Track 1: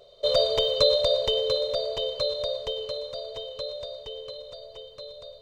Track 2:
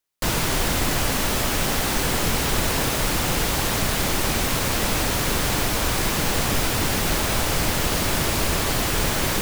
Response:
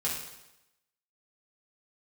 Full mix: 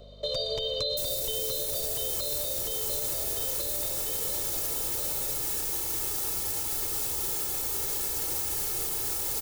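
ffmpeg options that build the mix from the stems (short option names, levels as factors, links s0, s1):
-filter_complex "[0:a]aeval=exprs='val(0)+0.00316*(sin(2*PI*50*n/s)+sin(2*PI*2*50*n/s)/2+sin(2*PI*3*50*n/s)/3+sin(2*PI*4*50*n/s)/4+sin(2*PI*5*50*n/s)/5)':c=same,volume=1.12[s0];[1:a]aeval=exprs='(mod(11.9*val(0)+1,2)-1)/11.9':c=same,equalizer=f=2200:w=0.44:g=-12,aecho=1:1:2.3:0.77,adelay=750,volume=1.12[s1];[s0][s1]amix=inputs=2:normalize=0,acrossover=split=390|3000[s2][s3][s4];[s3]acompressor=threshold=0.0178:ratio=6[s5];[s2][s5][s4]amix=inputs=3:normalize=0,alimiter=limit=0.0891:level=0:latency=1:release=105"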